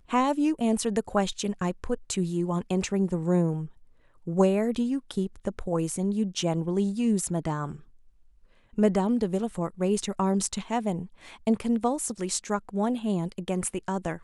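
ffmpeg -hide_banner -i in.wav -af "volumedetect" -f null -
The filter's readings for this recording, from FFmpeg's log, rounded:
mean_volume: -27.6 dB
max_volume: -9.3 dB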